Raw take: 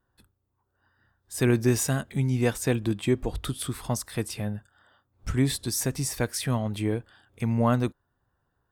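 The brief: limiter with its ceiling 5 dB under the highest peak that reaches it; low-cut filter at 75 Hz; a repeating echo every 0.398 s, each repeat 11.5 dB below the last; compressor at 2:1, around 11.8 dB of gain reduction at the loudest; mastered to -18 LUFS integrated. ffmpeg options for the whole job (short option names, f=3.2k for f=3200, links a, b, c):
-af "highpass=75,acompressor=threshold=-40dB:ratio=2,alimiter=level_in=3.5dB:limit=-24dB:level=0:latency=1,volume=-3.5dB,aecho=1:1:398|796|1194:0.266|0.0718|0.0194,volume=20.5dB"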